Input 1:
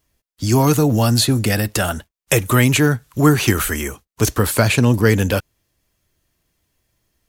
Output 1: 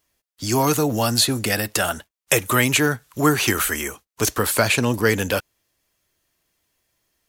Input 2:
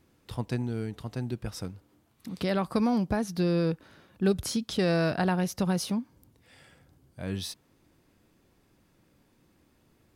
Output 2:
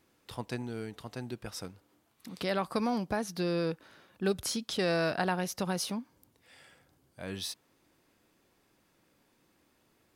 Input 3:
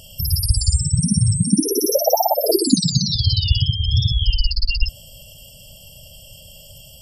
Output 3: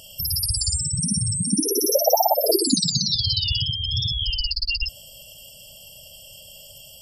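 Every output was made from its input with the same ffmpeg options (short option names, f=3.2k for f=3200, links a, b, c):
-af "lowshelf=f=250:g=-12"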